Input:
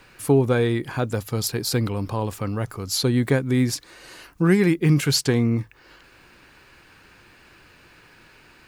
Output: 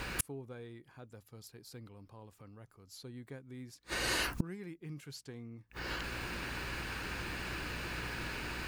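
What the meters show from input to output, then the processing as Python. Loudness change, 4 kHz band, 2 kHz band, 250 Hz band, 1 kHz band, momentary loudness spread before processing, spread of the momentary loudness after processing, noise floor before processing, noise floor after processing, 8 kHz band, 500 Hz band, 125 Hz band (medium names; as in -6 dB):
-17.5 dB, -12.0 dB, -6.5 dB, -22.5 dB, -10.5 dB, 9 LU, 18 LU, -53 dBFS, -66 dBFS, -13.0 dB, -22.0 dB, -22.0 dB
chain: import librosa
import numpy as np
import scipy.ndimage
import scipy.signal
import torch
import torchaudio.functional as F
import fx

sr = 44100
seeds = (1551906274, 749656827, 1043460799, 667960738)

y = fx.add_hum(x, sr, base_hz=60, snr_db=34)
y = fx.gate_flip(y, sr, shuts_db=-27.0, range_db=-38)
y = F.gain(torch.from_numpy(y), 10.5).numpy()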